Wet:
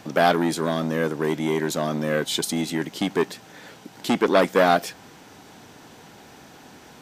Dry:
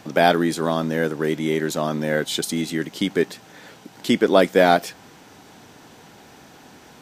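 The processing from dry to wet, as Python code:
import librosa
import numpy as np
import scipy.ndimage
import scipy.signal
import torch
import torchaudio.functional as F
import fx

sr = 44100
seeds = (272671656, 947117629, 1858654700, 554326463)

y = fx.transformer_sat(x, sr, knee_hz=1300.0)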